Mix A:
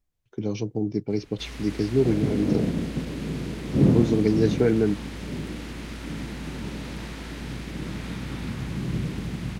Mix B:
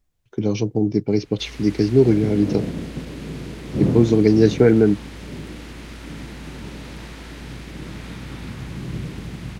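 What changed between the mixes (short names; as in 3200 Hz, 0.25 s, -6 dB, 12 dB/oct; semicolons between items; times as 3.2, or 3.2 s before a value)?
speech +7.0 dB; background: add bell 210 Hz -3 dB 0.89 oct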